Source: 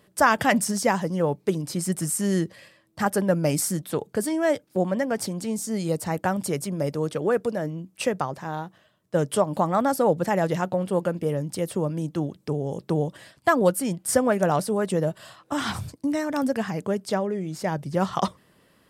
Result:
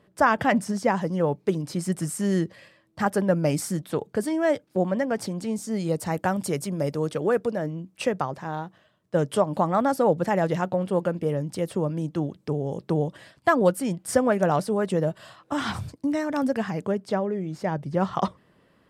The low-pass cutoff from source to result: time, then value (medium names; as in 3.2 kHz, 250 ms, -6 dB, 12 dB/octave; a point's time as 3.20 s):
low-pass 6 dB/octave
1.9 kHz
from 0.97 s 4 kHz
from 6.00 s 10 kHz
from 7.39 s 4.5 kHz
from 16.92 s 2.2 kHz